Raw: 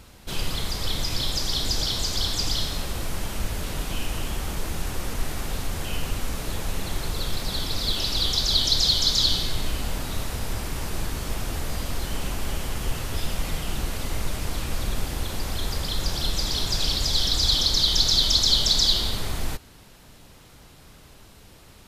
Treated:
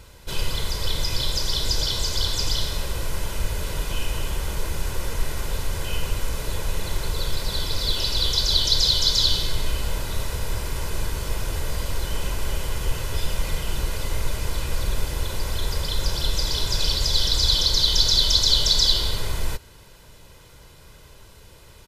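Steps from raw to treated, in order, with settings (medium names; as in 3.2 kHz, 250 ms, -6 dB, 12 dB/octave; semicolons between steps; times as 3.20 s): comb 2 ms, depth 50%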